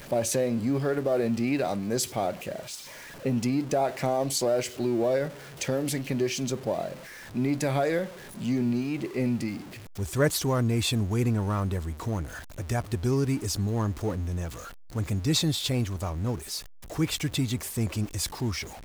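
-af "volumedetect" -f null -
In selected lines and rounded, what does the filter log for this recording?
mean_volume: -28.2 dB
max_volume: -12.9 dB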